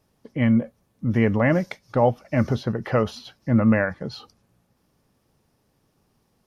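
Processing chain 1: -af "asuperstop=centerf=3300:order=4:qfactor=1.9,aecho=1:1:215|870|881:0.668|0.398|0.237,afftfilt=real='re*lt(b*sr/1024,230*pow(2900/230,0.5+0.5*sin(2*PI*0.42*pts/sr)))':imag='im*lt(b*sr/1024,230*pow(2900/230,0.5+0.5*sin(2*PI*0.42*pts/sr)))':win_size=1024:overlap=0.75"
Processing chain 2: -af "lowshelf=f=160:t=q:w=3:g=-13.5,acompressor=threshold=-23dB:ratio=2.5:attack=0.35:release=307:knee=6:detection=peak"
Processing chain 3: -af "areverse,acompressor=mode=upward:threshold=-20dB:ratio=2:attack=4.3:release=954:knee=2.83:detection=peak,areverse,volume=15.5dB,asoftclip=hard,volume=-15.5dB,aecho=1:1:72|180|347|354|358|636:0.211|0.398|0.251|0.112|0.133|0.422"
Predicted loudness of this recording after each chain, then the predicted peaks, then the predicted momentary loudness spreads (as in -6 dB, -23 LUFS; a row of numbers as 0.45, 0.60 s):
-22.5, -28.0, -23.0 LUFS; -4.5, -15.0, -10.5 dBFS; 13, 12, 13 LU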